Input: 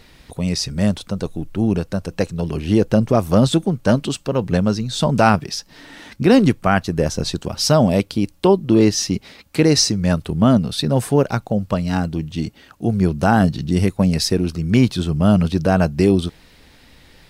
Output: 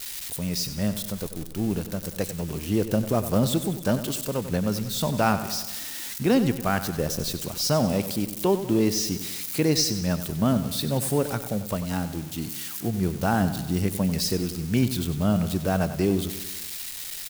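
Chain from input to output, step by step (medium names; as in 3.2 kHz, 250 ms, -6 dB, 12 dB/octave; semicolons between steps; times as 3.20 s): zero-crossing glitches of -17 dBFS; on a send: feedback delay 95 ms, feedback 57%, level -12 dB; on the sum: trim -8.5 dB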